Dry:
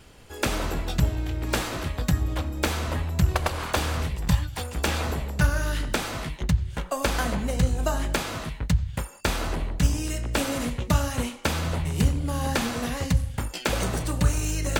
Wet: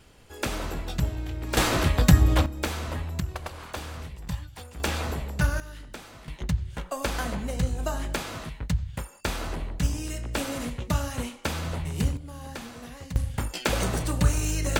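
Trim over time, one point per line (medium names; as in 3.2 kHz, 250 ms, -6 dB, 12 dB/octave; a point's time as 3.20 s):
-4 dB
from 1.57 s +7 dB
from 2.46 s -4 dB
from 3.20 s -10.5 dB
from 4.80 s -2.5 dB
from 5.60 s -15 dB
from 6.28 s -4 dB
from 12.17 s -13 dB
from 13.16 s 0 dB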